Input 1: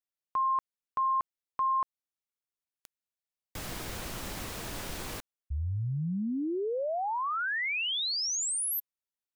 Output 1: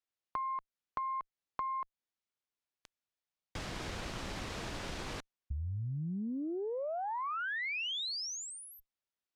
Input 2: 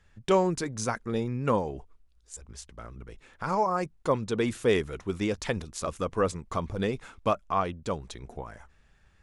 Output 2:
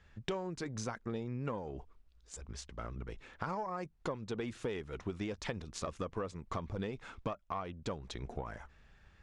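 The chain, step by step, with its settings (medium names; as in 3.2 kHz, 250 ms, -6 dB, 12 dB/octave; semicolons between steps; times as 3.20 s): compression 12:1, threshold -36 dBFS; Chebyshev shaper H 8 -32 dB, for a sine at -20 dBFS; low-pass 5.6 kHz 12 dB/octave; trim +1 dB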